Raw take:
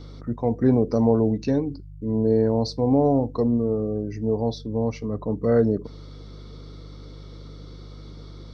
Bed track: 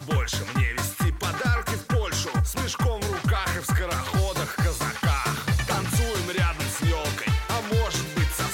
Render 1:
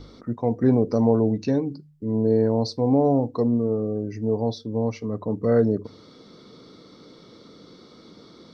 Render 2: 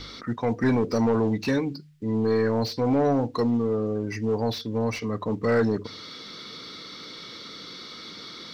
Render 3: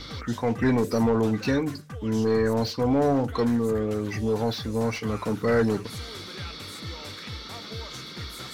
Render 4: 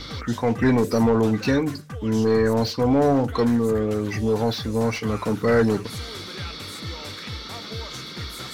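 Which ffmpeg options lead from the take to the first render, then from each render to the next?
ffmpeg -i in.wav -af "bandreject=frequency=50:width_type=h:width=4,bandreject=frequency=100:width_type=h:width=4,bandreject=frequency=150:width_type=h:width=4" out.wav
ffmpeg -i in.wav -filter_complex "[0:a]acrossover=split=1600[link_01][link_02];[link_01]asoftclip=type=tanh:threshold=-16.5dB[link_03];[link_02]asplit=2[link_04][link_05];[link_05]highpass=frequency=720:poles=1,volume=28dB,asoftclip=type=tanh:threshold=-21dB[link_06];[link_04][link_06]amix=inputs=2:normalize=0,lowpass=frequency=2200:poles=1,volume=-6dB[link_07];[link_03][link_07]amix=inputs=2:normalize=0" out.wav
ffmpeg -i in.wav -i bed.wav -filter_complex "[1:a]volume=-15dB[link_01];[0:a][link_01]amix=inputs=2:normalize=0" out.wav
ffmpeg -i in.wav -af "volume=3.5dB" out.wav

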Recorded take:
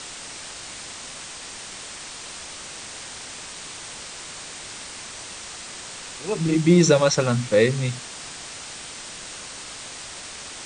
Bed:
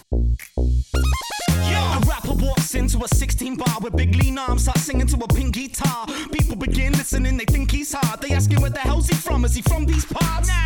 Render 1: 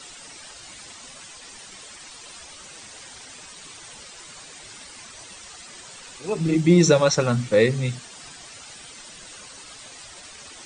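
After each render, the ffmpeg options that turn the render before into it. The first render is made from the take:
ffmpeg -i in.wav -af "afftdn=noise_reduction=11:noise_floor=-38" out.wav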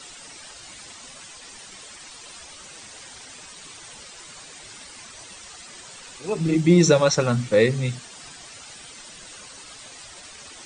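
ffmpeg -i in.wav -af anull out.wav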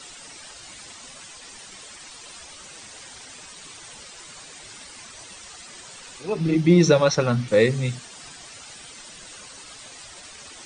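ffmpeg -i in.wav -filter_complex "[0:a]asettb=1/sr,asplit=3[link_01][link_02][link_03];[link_01]atrim=end=6.234[link_04];[link_02]atrim=start=6.23:end=7.48,asetpts=PTS-STARTPTS,afade=type=in:duration=0.004:curve=qsin,afade=type=out:start_time=1.246:duration=0.004:curve=qsin,equalizer=frequency=7600:width=3.1:gain=-13.5[link_05];[link_03]atrim=start=7.476[link_06];[link_04][link_05]acrossfade=duration=0.004:curve1=hsin:curve2=qsin[link_07];[link_07][link_06]acrossfade=duration=0.004:curve1=qsin:curve2=hsin" out.wav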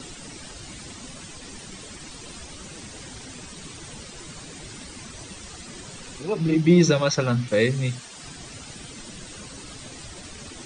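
ffmpeg -i in.wav -filter_complex "[0:a]acrossover=split=360|1200[link_01][link_02][link_03];[link_01]acompressor=mode=upward:threshold=-30dB:ratio=2.5[link_04];[link_02]alimiter=limit=-18.5dB:level=0:latency=1:release=402[link_05];[link_04][link_05][link_03]amix=inputs=3:normalize=0" out.wav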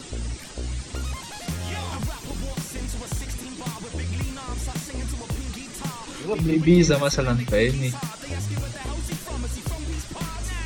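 ffmpeg -i in.wav -i bed.wav -filter_complex "[1:a]volume=-11.5dB[link_01];[0:a][link_01]amix=inputs=2:normalize=0" out.wav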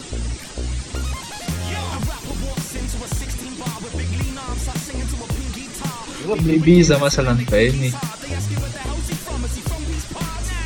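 ffmpeg -i in.wav -af "volume=5dB,alimiter=limit=-2dB:level=0:latency=1" out.wav

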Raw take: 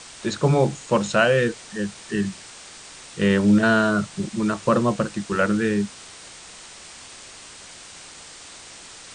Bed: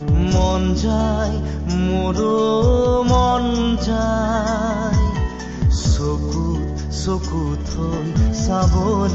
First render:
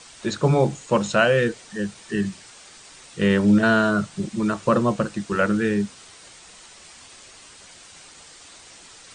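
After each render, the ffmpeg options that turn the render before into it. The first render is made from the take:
ffmpeg -i in.wav -af "afftdn=noise_reduction=6:noise_floor=-43" out.wav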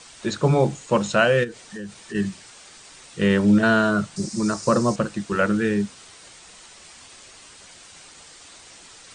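ffmpeg -i in.wav -filter_complex "[0:a]asplit=3[link_01][link_02][link_03];[link_01]afade=type=out:start_time=1.43:duration=0.02[link_04];[link_02]acompressor=threshold=-31dB:ratio=4:attack=3.2:release=140:knee=1:detection=peak,afade=type=in:start_time=1.43:duration=0.02,afade=type=out:start_time=2.14:duration=0.02[link_05];[link_03]afade=type=in:start_time=2.14:duration=0.02[link_06];[link_04][link_05][link_06]amix=inputs=3:normalize=0,asettb=1/sr,asplit=3[link_07][link_08][link_09];[link_07]atrim=end=4.164[link_10];[link_08]atrim=start=4.16:end=4.96,asetpts=PTS-STARTPTS,afade=type=in:duration=0.004:curve=qsin,afade=type=out:start_time=0.796:duration=0.004:curve=qsin,highshelf=frequency=4100:width_type=q:width=3:gain=7.5[link_11];[link_09]atrim=start=4.956[link_12];[link_10][link_11]acrossfade=duration=0.004:curve1=hsin:curve2=qsin[link_13];[link_13][link_12]acrossfade=duration=0.004:curve1=qsin:curve2=hsin" out.wav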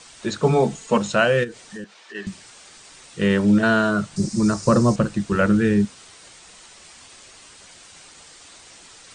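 ffmpeg -i in.wav -filter_complex "[0:a]asettb=1/sr,asplit=3[link_01][link_02][link_03];[link_01]atrim=end=0.424[link_04];[link_02]atrim=start=0.42:end=0.98,asetpts=PTS-STARTPTS,afade=type=in:duration=0.004:curve=qsin,afade=type=out:start_time=0.556:duration=0.004:curve=qsin,aecho=1:1:4.5:0.65,atrim=end_sample=24696[link_05];[link_03]atrim=start=0.976[link_06];[link_04][link_05]acrossfade=duration=0.004:curve1=hsin:curve2=qsin[link_07];[link_07][link_06]acrossfade=duration=0.004:curve1=qsin:curve2=hsin,asettb=1/sr,asplit=3[link_08][link_09][link_10];[link_08]atrim=end=1.844[link_11];[link_09]atrim=start=1.84:end=2.27,asetpts=PTS-STARTPTS,afade=type=in:duration=0.004:curve=qsin,afade=type=out:start_time=0.426:duration=0.004:curve=qsin,highpass=540,lowpass=4500[link_12];[link_10]atrim=start=2.266[link_13];[link_11][link_12]acrossfade=duration=0.004:curve1=hsin:curve2=qsin[link_14];[link_14][link_13]acrossfade=duration=0.004:curve1=qsin:curve2=hsin,asettb=1/sr,asplit=3[link_15][link_16][link_17];[link_15]atrim=end=4.114[link_18];[link_16]atrim=start=4.11:end=5.85,asetpts=PTS-STARTPTS,afade=type=in:duration=0.004:curve=qsin,afade=type=out:start_time=1.736:duration=0.004:curve=qsin,lowshelf=frequency=190:gain=10.5[link_19];[link_17]atrim=start=5.846[link_20];[link_18][link_19]acrossfade=duration=0.004:curve1=hsin:curve2=qsin[link_21];[link_21][link_20]acrossfade=duration=0.004:curve1=qsin:curve2=hsin" out.wav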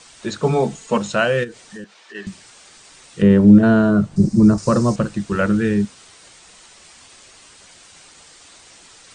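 ffmpeg -i in.wav -filter_complex "[0:a]asettb=1/sr,asplit=3[link_01][link_02][link_03];[link_01]atrim=end=3.224[link_04];[link_02]atrim=start=3.22:end=4.58,asetpts=PTS-STARTPTS,afade=type=in:duration=0.004:curve=qsin,afade=type=out:start_time=1.356:duration=0.004:curve=qsin,tiltshelf=frequency=840:gain=9[link_05];[link_03]atrim=start=4.576[link_06];[link_04][link_05]acrossfade=duration=0.004:curve1=hsin:curve2=qsin[link_07];[link_07][link_06]acrossfade=duration=0.004:curve1=qsin:curve2=hsin" out.wav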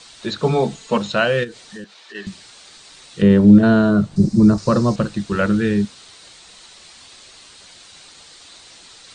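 ffmpeg -i in.wav -filter_complex "[0:a]equalizer=frequency=4000:width=2.4:gain=8,acrossover=split=5200[link_01][link_02];[link_02]acompressor=threshold=-45dB:ratio=4:attack=1:release=60[link_03];[link_01][link_03]amix=inputs=2:normalize=0" out.wav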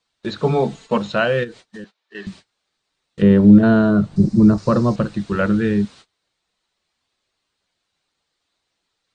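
ffmpeg -i in.wav -af "agate=range=-27dB:threshold=-38dB:ratio=16:detection=peak,highshelf=frequency=4200:gain=-10.5" out.wav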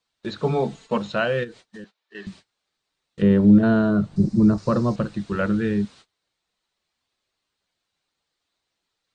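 ffmpeg -i in.wav -af "volume=-4.5dB" out.wav

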